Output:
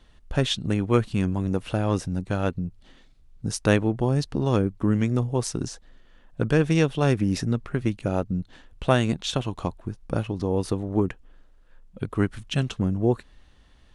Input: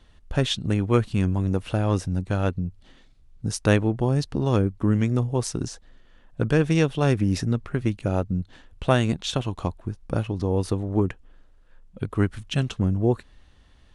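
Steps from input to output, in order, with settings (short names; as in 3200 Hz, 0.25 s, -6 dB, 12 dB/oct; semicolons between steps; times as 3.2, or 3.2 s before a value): bell 89 Hz -5 dB 0.54 oct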